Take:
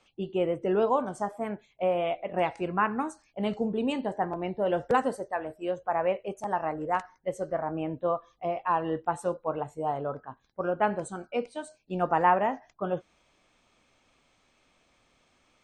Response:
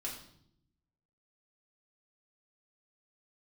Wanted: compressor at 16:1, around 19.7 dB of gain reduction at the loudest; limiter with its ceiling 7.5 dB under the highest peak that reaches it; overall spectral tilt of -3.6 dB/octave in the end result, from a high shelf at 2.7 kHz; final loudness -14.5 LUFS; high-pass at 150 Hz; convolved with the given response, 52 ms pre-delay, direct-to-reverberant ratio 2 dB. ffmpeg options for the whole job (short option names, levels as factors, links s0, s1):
-filter_complex "[0:a]highpass=150,highshelf=f=2700:g=-4,acompressor=threshold=0.0112:ratio=16,alimiter=level_in=3.55:limit=0.0631:level=0:latency=1,volume=0.282,asplit=2[s0][s1];[1:a]atrim=start_sample=2205,adelay=52[s2];[s1][s2]afir=irnorm=-1:irlink=0,volume=0.794[s3];[s0][s3]amix=inputs=2:normalize=0,volume=29.9"